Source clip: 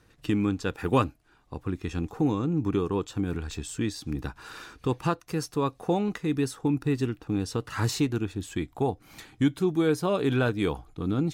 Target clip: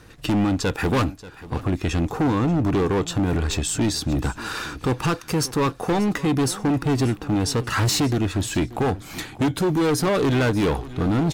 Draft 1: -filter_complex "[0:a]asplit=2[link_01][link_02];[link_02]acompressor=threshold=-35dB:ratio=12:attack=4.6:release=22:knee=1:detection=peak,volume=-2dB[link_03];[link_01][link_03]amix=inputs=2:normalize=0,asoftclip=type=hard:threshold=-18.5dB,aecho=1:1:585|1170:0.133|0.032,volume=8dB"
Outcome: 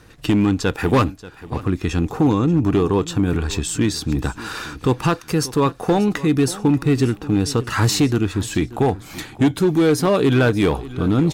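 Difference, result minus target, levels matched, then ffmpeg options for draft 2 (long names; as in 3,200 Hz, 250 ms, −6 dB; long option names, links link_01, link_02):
hard clipping: distortion −9 dB
-filter_complex "[0:a]asplit=2[link_01][link_02];[link_02]acompressor=threshold=-35dB:ratio=12:attack=4.6:release=22:knee=1:detection=peak,volume=-2dB[link_03];[link_01][link_03]amix=inputs=2:normalize=0,asoftclip=type=hard:threshold=-25.5dB,aecho=1:1:585|1170:0.133|0.032,volume=8dB"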